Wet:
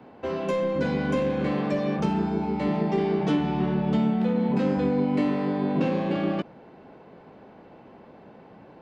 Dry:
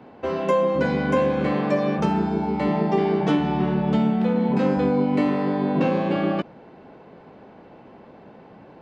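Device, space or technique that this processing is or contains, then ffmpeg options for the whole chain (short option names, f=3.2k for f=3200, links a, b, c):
one-band saturation: -filter_complex "[0:a]acrossover=split=480|2500[a][b][c];[b]asoftclip=type=tanh:threshold=-27.5dB[d];[a][d][c]amix=inputs=3:normalize=0,volume=-2.5dB"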